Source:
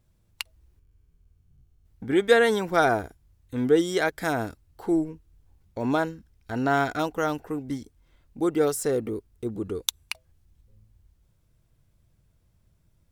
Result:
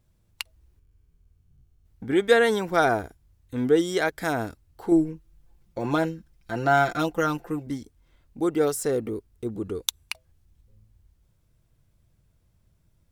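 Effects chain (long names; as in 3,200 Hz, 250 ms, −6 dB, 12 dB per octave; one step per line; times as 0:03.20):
0:04.91–0:07.67: comb filter 5.8 ms, depth 73%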